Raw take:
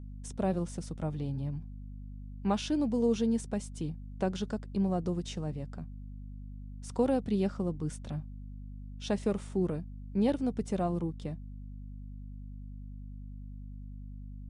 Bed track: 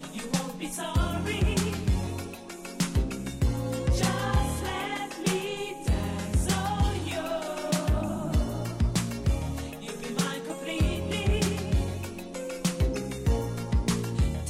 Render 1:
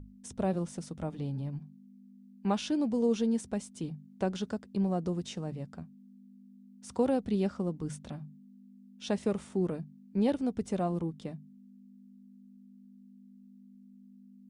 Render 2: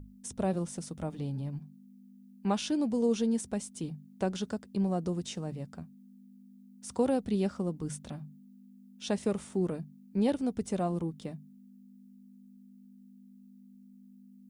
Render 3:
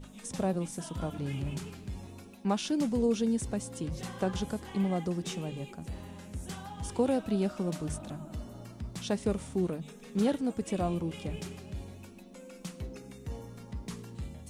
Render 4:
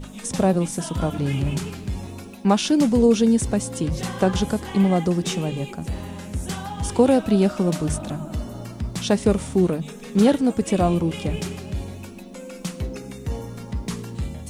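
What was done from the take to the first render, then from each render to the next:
hum notches 50/100/150 Hz
treble shelf 8.4 kHz +11 dB
add bed track -14.5 dB
trim +11.5 dB

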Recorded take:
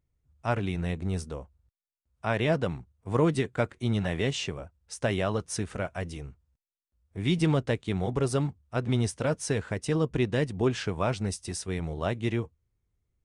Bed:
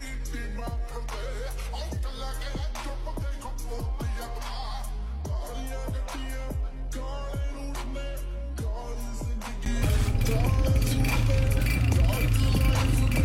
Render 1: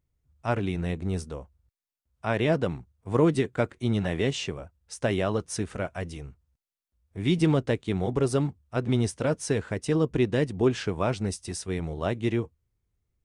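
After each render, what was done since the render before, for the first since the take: dynamic bell 330 Hz, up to +4 dB, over -36 dBFS, Q 1.1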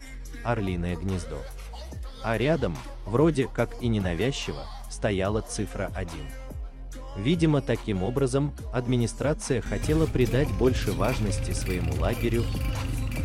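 add bed -6 dB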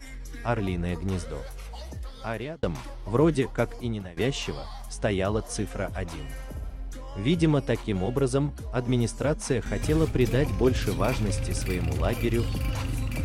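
2.07–2.63 s: fade out; 3.68–4.17 s: fade out, to -23 dB; 6.24–6.94 s: flutter echo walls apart 10.9 m, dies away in 0.8 s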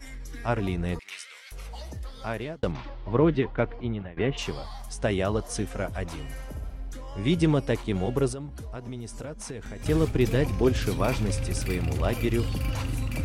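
0.99–1.52 s: resonant high-pass 2.3 kHz, resonance Q 3.1; 2.71–4.37 s: low-pass 4.6 kHz -> 2.7 kHz 24 dB/octave; 8.32–9.86 s: compression 5:1, threshold -34 dBFS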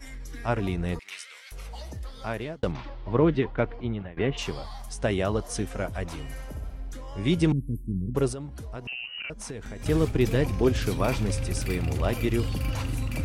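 7.52–8.15 s: inverse Chebyshev band-stop 760–4800 Hz, stop band 60 dB; 8.87–9.30 s: frequency inversion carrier 2.9 kHz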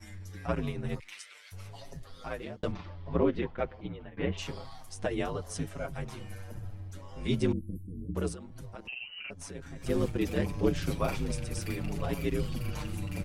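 ring modulator 50 Hz; endless flanger 6.2 ms -0.78 Hz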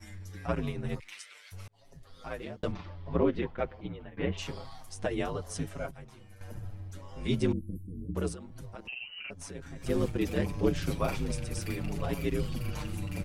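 1.68–2.42 s: fade in; 5.91–6.41 s: gain -10.5 dB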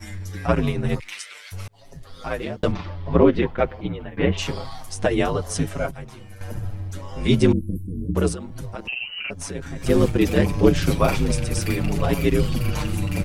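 trim +11.5 dB

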